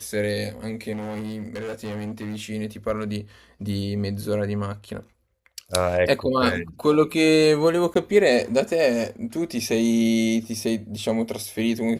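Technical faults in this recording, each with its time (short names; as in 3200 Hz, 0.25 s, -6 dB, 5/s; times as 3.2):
0.92–2.41 clipped -28 dBFS
7.94–7.95 gap 14 ms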